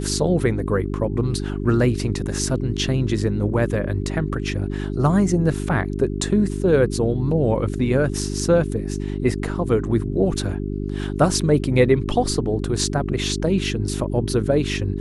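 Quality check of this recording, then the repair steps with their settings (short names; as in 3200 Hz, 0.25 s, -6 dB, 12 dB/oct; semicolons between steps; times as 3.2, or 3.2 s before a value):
hum 50 Hz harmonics 8 -26 dBFS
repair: de-hum 50 Hz, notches 8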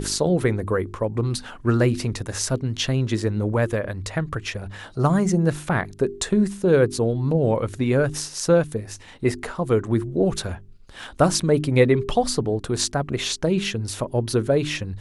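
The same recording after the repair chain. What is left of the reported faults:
none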